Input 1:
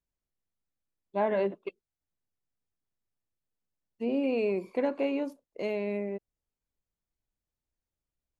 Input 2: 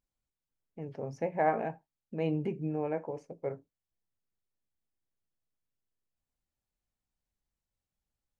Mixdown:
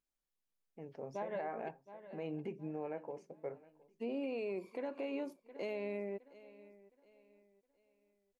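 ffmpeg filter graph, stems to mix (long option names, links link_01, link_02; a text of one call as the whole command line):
ffmpeg -i stem1.wav -i stem2.wav -filter_complex "[0:a]volume=-4.5dB,asplit=2[link_01][link_02];[link_02]volume=-21dB[link_03];[1:a]volume=-5.5dB,asplit=3[link_04][link_05][link_06];[link_05]volume=-23dB[link_07];[link_06]apad=whole_len=370190[link_08];[link_01][link_08]sidechaincompress=threshold=-38dB:ratio=8:attack=31:release=691[link_09];[link_03][link_07]amix=inputs=2:normalize=0,aecho=0:1:715|1430|2145|2860|3575:1|0.35|0.122|0.0429|0.015[link_10];[link_09][link_04][link_10]amix=inputs=3:normalize=0,equalizer=frequency=77:width=0.7:gain=-13.5,alimiter=level_in=7.5dB:limit=-24dB:level=0:latency=1:release=139,volume=-7.5dB" out.wav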